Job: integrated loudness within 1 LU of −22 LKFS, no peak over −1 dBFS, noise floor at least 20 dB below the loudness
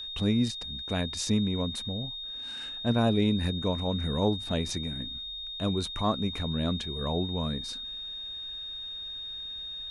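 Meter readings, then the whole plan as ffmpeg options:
interfering tone 3,700 Hz; level of the tone −36 dBFS; integrated loudness −30.5 LKFS; sample peak −13.5 dBFS; target loudness −22.0 LKFS
→ -af "bandreject=frequency=3700:width=30"
-af "volume=8.5dB"

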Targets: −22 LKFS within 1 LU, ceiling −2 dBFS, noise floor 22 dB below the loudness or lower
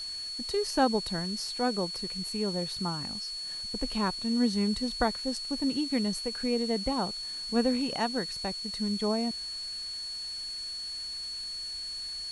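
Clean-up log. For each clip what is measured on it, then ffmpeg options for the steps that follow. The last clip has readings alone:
interfering tone 4,400 Hz; level of the tone −35 dBFS; background noise floor −38 dBFS; target noise floor −53 dBFS; integrated loudness −31.0 LKFS; sample peak −12.5 dBFS; target loudness −22.0 LKFS
→ -af "bandreject=frequency=4400:width=30"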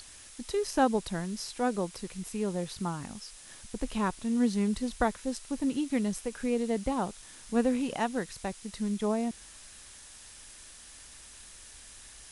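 interfering tone none found; background noise floor −51 dBFS; target noise floor −54 dBFS
→ -af "afftdn=noise_reduction=6:noise_floor=-51"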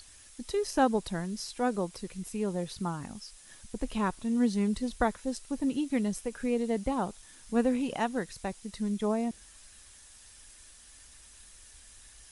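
background noise floor −54 dBFS; integrated loudness −31.5 LKFS; sample peak −13.0 dBFS; target loudness −22.0 LKFS
→ -af "volume=9.5dB"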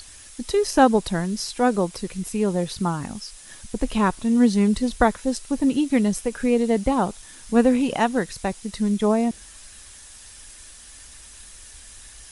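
integrated loudness −22.0 LKFS; sample peak −3.5 dBFS; background noise floor −45 dBFS

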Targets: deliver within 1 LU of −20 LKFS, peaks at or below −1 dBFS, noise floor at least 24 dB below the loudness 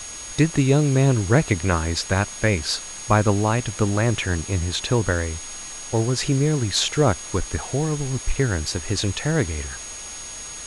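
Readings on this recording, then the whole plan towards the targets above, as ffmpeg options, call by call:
interfering tone 6,600 Hz; level of the tone −35 dBFS; background noise floor −35 dBFS; target noise floor −46 dBFS; integrated loudness −22.0 LKFS; sample peak −5.5 dBFS; target loudness −20.0 LKFS
→ -af "bandreject=frequency=6600:width=30"
-af "afftdn=noise_reduction=11:noise_floor=-35"
-af "volume=2dB"

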